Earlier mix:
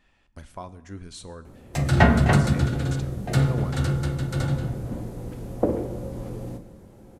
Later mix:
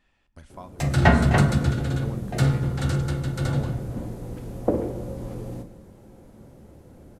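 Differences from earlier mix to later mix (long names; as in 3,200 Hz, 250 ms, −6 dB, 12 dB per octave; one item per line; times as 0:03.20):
speech −4.0 dB
background: entry −0.95 s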